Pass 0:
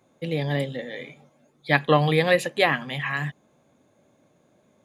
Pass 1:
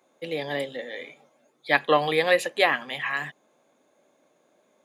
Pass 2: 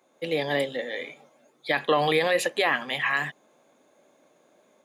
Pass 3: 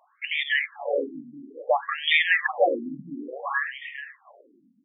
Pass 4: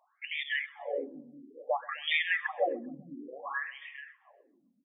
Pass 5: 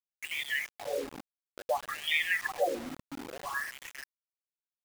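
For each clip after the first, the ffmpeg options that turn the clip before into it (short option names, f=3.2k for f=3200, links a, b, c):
-af "highpass=360"
-af "alimiter=limit=-16dB:level=0:latency=1:release=27,dynaudnorm=f=120:g=3:m=3.5dB"
-af "aecho=1:1:410|820|1230|1640:0.447|0.138|0.0429|0.0133,afftfilt=real='re*between(b*sr/1024,210*pow(2600/210,0.5+0.5*sin(2*PI*0.58*pts/sr))/1.41,210*pow(2600/210,0.5+0.5*sin(2*PI*0.58*pts/sr))*1.41)':imag='im*between(b*sr/1024,210*pow(2600/210,0.5+0.5*sin(2*PI*0.58*pts/sr))/1.41,210*pow(2600/210,0.5+0.5*sin(2*PI*0.58*pts/sr))*1.41)':win_size=1024:overlap=0.75,volume=8.5dB"
-af "aecho=1:1:130|260|390:0.075|0.033|0.0145,volume=-8.5dB"
-af "acrusher=bits=6:mix=0:aa=0.000001"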